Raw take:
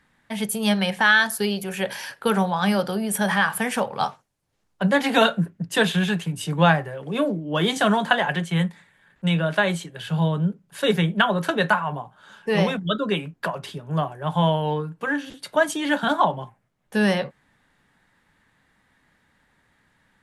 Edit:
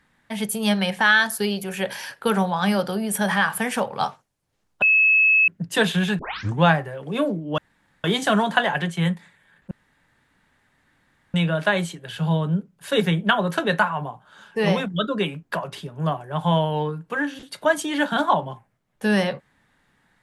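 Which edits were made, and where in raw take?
0:04.82–0:05.48: beep over 2,590 Hz −13 dBFS
0:06.19: tape start 0.42 s
0:07.58: splice in room tone 0.46 s
0:09.25: splice in room tone 1.63 s

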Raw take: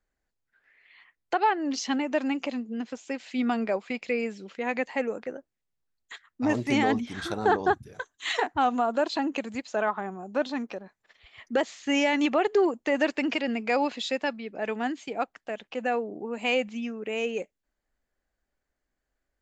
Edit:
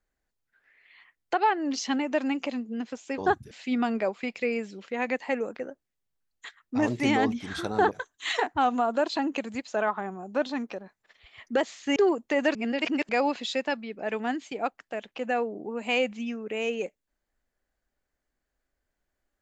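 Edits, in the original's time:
0:07.58–0:07.91: move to 0:03.18
0:11.96–0:12.52: remove
0:13.11–0:13.65: reverse

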